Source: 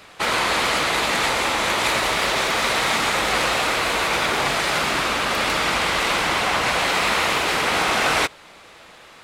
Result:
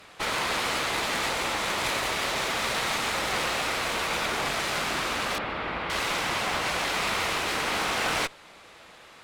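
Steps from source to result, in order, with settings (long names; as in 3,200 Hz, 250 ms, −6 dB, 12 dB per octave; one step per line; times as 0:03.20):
asymmetric clip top −28 dBFS
0:05.38–0:05.90: high-frequency loss of the air 400 metres
level −4.5 dB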